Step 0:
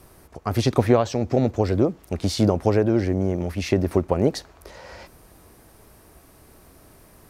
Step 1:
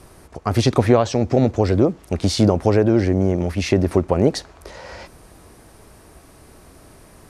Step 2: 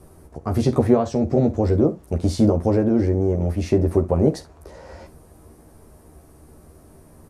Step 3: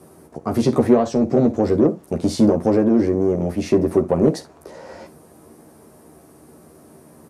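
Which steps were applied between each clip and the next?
LPF 11000 Hz 24 dB/oct; in parallel at -2.5 dB: limiter -12 dBFS, peak gain reduction 8.5 dB
bell 3100 Hz -13 dB 3 oct; on a send: early reflections 13 ms -4 dB, 47 ms -15.5 dB, 70 ms -17.5 dB; on the sum: gain -1.5 dB
Chebyshev high-pass 190 Hz, order 2; in parallel at -3.5 dB: soft clip -17 dBFS, distortion -10 dB

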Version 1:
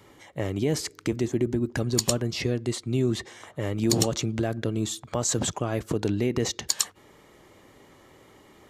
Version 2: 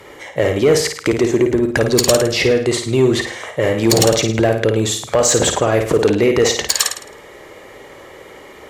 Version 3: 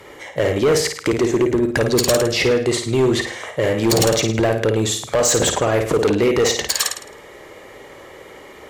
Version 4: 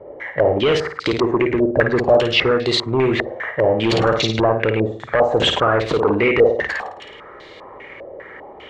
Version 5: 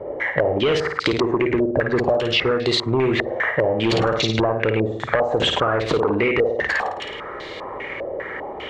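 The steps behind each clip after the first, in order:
ten-band EQ 125 Hz -4 dB, 250 Hz -5 dB, 500 Hz +8 dB, 2000 Hz +6 dB; flutter echo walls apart 9.2 m, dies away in 0.47 s; added harmonics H 5 -15 dB, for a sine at -6.5 dBFS; gain +5.5 dB
hard clip -10 dBFS, distortion -16 dB; gain -1.5 dB
stepped low-pass 5 Hz 600–4000 Hz; gain -1.5 dB
compressor 6:1, threshold -24 dBFS, peak gain reduction 14.5 dB; gain +7 dB

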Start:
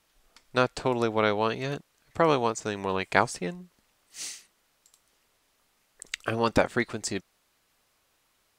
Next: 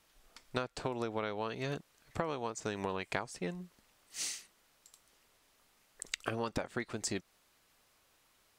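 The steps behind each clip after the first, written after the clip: compressor 12:1, threshold -32 dBFS, peak gain reduction 18 dB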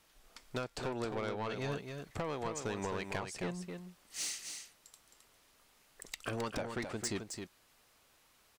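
soft clip -31.5 dBFS, distortion -10 dB; echo 0.265 s -6.5 dB; gain +1.5 dB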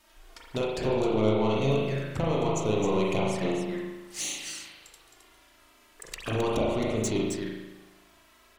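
envelope flanger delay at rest 3.4 ms, full sweep at -37 dBFS; spring tank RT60 1.1 s, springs 37 ms, chirp 35 ms, DRR -3.5 dB; gain +8 dB

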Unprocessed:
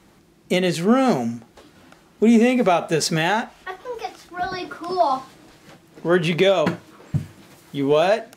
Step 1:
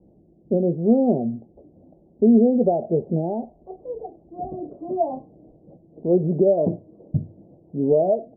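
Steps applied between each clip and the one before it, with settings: steep low-pass 680 Hz 48 dB/oct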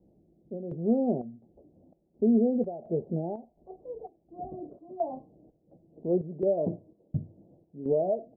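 chopper 1.4 Hz, depth 65%, duty 70%; gain -8 dB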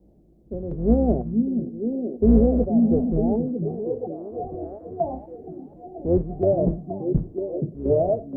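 octaver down 2 oct, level -2 dB; delay with a stepping band-pass 0.475 s, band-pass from 200 Hz, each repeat 0.7 oct, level -1 dB; gain +5.5 dB

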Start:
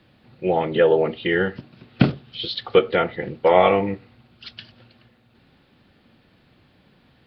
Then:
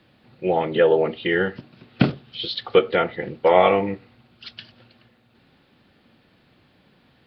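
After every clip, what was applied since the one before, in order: low shelf 110 Hz -6 dB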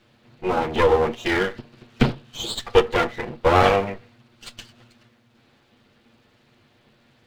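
minimum comb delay 8.5 ms; gain +1 dB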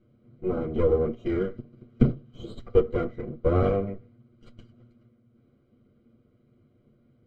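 running mean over 50 samples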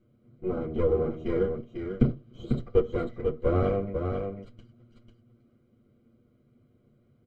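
echo 0.495 s -5.5 dB; gain -2.5 dB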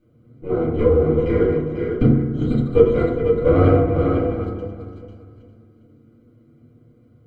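regenerating reverse delay 0.202 s, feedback 54%, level -8 dB; dynamic EQ 2600 Hz, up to +4 dB, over -48 dBFS, Q 0.96; FDN reverb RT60 0.79 s, low-frequency decay 1.45×, high-frequency decay 0.3×, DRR -3.5 dB; gain +2.5 dB

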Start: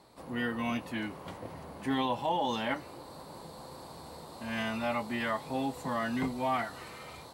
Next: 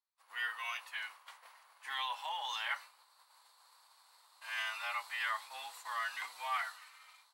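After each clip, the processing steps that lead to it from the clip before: expander -38 dBFS; HPF 1100 Hz 24 dB/oct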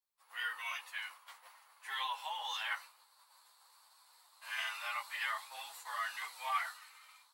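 high shelf 10000 Hz +7.5 dB; ensemble effect; gain +2 dB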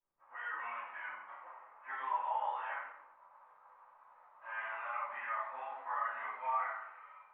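limiter -34.5 dBFS, peak gain reduction 11 dB; Gaussian blur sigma 5.6 samples; shoebox room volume 170 m³, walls mixed, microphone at 2.8 m; gain +1.5 dB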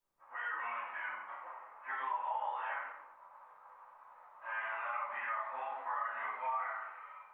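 compressor 2.5:1, threshold -40 dBFS, peak gain reduction 7 dB; gain +4 dB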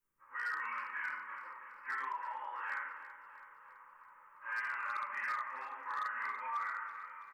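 fixed phaser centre 1700 Hz, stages 4; overloaded stage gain 34 dB; feedback echo 0.329 s, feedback 58%, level -13.5 dB; gain +2.5 dB

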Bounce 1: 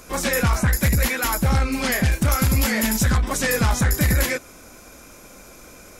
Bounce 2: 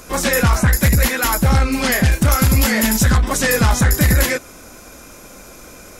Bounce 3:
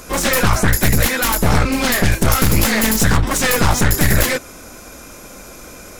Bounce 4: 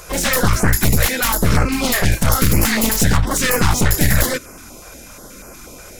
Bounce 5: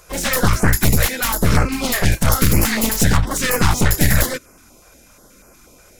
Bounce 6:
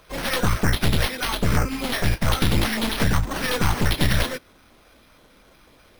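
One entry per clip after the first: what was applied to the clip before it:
notch 2300 Hz, Q 27; gain +5 dB
one-sided fold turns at -18 dBFS; gain +2.5 dB
stepped notch 8.3 Hz 250–3600 Hz
upward expander 1.5:1, over -33 dBFS; gain +1 dB
careless resampling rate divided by 6×, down none, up hold; gain -5.5 dB

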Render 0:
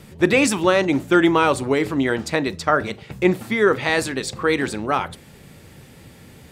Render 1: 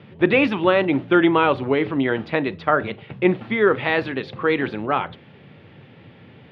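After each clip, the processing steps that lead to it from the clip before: elliptic band-pass 100–3200 Hz, stop band 40 dB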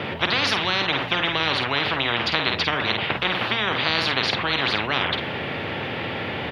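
doubler 50 ms -9.5 dB; spectral compressor 10:1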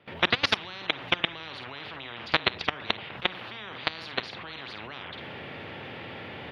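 gate with hold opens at -20 dBFS; level quantiser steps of 21 dB; gain +1.5 dB

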